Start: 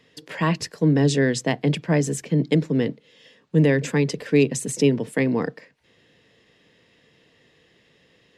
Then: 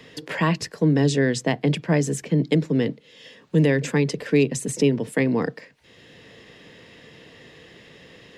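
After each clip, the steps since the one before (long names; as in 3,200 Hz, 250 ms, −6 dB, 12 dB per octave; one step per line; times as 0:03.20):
multiband upward and downward compressor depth 40%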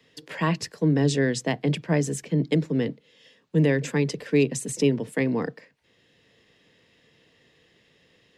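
multiband upward and downward expander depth 40%
level −3 dB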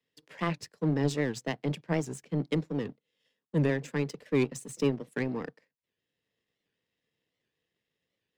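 power curve on the samples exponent 1.4
wow of a warped record 78 rpm, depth 160 cents
level −4 dB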